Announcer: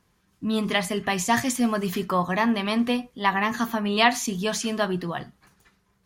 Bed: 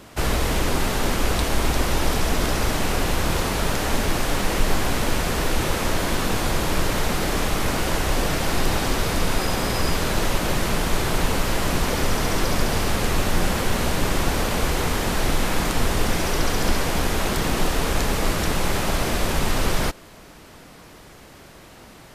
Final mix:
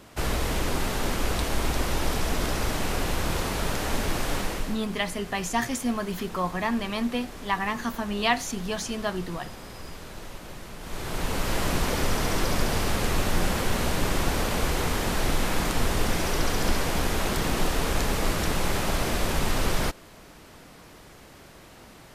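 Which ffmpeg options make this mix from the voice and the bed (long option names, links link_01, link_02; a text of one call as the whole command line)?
ffmpeg -i stem1.wav -i stem2.wav -filter_complex "[0:a]adelay=4250,volume=-4.5dB[link_01];[1:a]volume=10dB,afade=type=out:start_time=4.36:duration=0.44:silence=0.211349,afade=type=in:start_time=10.79:duration=0.79:silence=0.177828[link_02];[link_01][link_02]amix=inputs=2:normalize=0" out.wav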